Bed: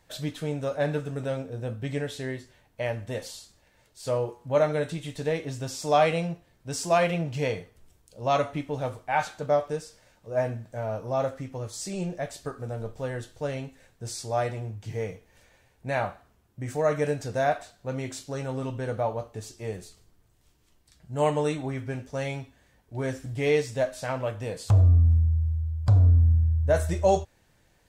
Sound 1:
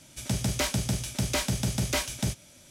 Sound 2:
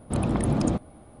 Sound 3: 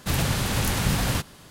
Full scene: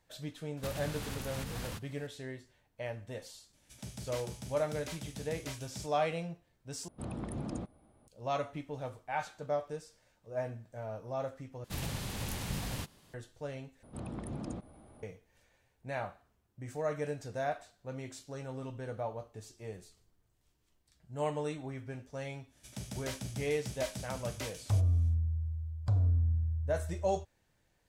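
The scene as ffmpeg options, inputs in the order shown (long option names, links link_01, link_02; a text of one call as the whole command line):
ffmpeg -i bed.wav -i cue0.wav -i cue1.wav -i cue2.wav -filter_complex "[3:a]asplit=2[link_01][link_02];[1:a]asplit=2[link_03][link_04];[2:a]asplit=2[link_05][link_06];[0:a]volume=-10dB[link_07];[link_01]alimiter=limit=-19.5dB:level=0:latency=1:release=414[link_08];[link_02]equalizer=frequency=1400:width_type=o:width=0.71:gain=-4[link_09];[link_06]acompressor=mode=upward:threshold=-30dB:ratio=2.5:attack=1.7:release=34:knee=2.83:detection=peak[link_10];[link_07]asplit=4[link_11][link_12][link_13][link_14];[link_11]atrim=end=6.884[link_15];[link_05]atrim=end=1.2,asetpts=PTS-STARTPTS,volume=-15dB[link_16];[link_12]atrim=start=8.076:end=11.644[link_17];[link_09]atrim=end=1.5,asetpts=PTS-STARTPTS,volume=-13.5dB[link_18];[link_13]atrim=start=13.136:end=13.834[link_19];[link_10]atrim=end=1.2,asetpts=PTS-STARTPTS,volume=-16.5dB[link_20];[link_14]atrim=start=15.026[link_21];[link_08]atrim=end=1.5,asetpts=PTS-STARTPTS,volume=-10.5dB,afade=type=in:duration=0.004:curve=hsin,afade=type=out:start_time=1.496:duration=0.004:curve=hsin,adelay=570[link_22];[link_03]atrim=end=2.7,asetpts=PTS-STARTPTS,volume=-16.5dB,afade=type=in:duration=0.004:curve=hsin,afade=type=out:start_time=2.696:duration=0.004:curve=hsin,adelay=155673S[link_23];[link_04]atrim=end=2.7,asetpts=PTS-STARTPTS,volume=-14dB,afade=type=in:duration=0.1,afade=type=out:start_time=2.6:duration=0.1,adelay=22470[link_24];[link_15][link_16]acrossfade=duration=0.004:curve1=hsin:curve2=hsin[link_25];[link_25][link_17]acrossfade=duration=0.004:curve1=hsin:curve2=hsin[link_26];[link_26][link_18]acrossfade=duration=0.004:curve1=hsin:curve2=hsin[link_27];[link_27][link_19]acrossfade=duration=0.004:curve1=hsin:curve2=hsin[link_28];[link_28][link_20]acrossfade=duration=0.004:curve1=hsin:curve2=hsin[link_29];[link_29][link_21]acrossfade=duration=0.004:curve1=hsin:curve2=hsin[link_30];[link_30][link_22][link_23][link_24]amix=inputs=4:normalize=0" out.wav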